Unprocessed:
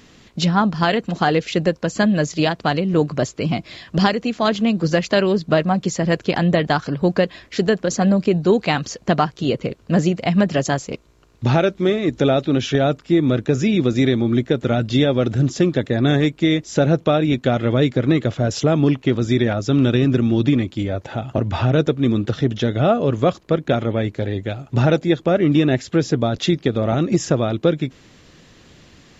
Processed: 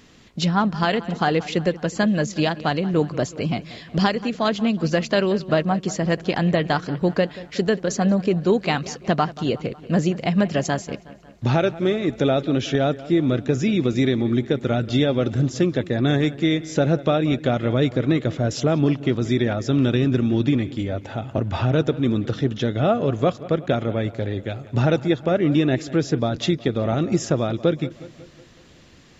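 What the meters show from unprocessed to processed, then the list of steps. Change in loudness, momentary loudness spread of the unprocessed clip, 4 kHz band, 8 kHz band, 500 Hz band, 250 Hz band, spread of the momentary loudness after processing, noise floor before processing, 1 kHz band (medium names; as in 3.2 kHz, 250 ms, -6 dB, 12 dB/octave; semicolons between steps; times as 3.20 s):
-3.0 dB, 6 LU, -3.0 dB, no reading, -3.0 dB, -3.0 dB, 6 LU, -50 dBFS, -3.0 dB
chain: feedback echo behind a low-pass 183 ms, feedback 56%, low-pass 3.6 kHz, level -17.5 dB; trim -3 dB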